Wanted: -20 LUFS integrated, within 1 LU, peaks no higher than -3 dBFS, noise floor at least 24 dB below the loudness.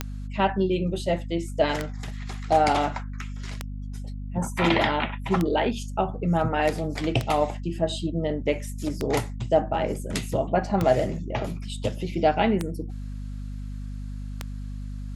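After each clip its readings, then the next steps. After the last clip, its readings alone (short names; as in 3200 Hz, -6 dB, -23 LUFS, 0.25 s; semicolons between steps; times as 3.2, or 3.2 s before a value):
clicks 9; hum 50 Hz; harmonics up to 250 Hz; hum level -31 dBFS; loudness -26.0 LUFS; peak -7.5 dBFS; loudness target -20.0 LUFS
-> de-click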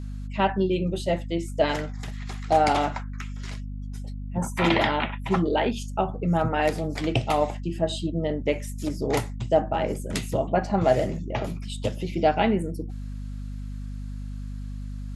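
clicks 0; hum 50 Hz; harmonics up to 250 Hz; hum level -31 dBFS
-> notches 50/100/150/200/250 Hz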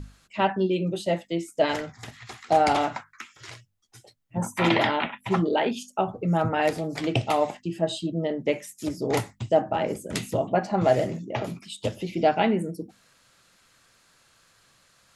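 hum none; loudness -26.0 LUFS; peak -8.0 dBFS; loudness target -20.0 LUFS
-> gain +6 dB; limiter -3 dBFS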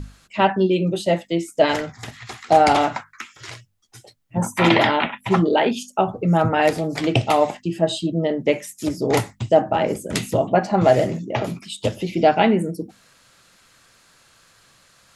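loudness -20.0 LUFS; peak -3.0 dBFS; noise floor -57 dBFS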